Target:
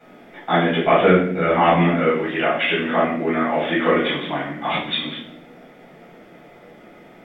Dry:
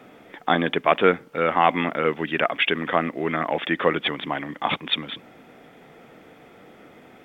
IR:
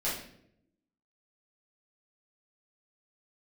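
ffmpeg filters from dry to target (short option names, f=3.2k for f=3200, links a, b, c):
-filter_complex "[0:a]asettb=1/sr,asplit=3[a][b][c];[a]atrim=end=0.864[d];[b]atrim=start=0.86:end=1.98,asetpts=PTS-STARTPTS,afade=t=in:d=0.004:c=qsin,afade=t=out:st=1.116:d=0.004:c=qsin,lowshelf=f=180:g=11.5[e];[c]atrim=start=1.976[f];[d][e]acrossfade=d=0.004:c1=hsin:c2=qsin[g];[g][f]acrossfade=d=0.004:c1=qsin:c2=hsin,asettb=1/sr,asplit=3[h][i][j];[h]atrim=end=3.444[k];[i]atrim=start=3.44:end=4.03,asetpts=PTS-STARTPTS,afade=t=in:d=0.004:c=qsin,afade=t=out:st=0.586:d=0.004:c=qsin,asplit=2[l][m];[m]adelay=38,volume=-5.5dB[n];[l][n]amix=inputs=2:normalize=0,atrim=end_sample=26019[o];[j]atrim=start=4.026[p];[k][o]acrossfade=d=0.004:c1=hsin:c2=qsin[q];[q][p]acrossfade=d=0.004:c1=qsin:c2=hsin[r];[1:a]atrim=start_sample=2205[s];[r][s]afir=irnorm=-1:irlink=0,volume=-4dB"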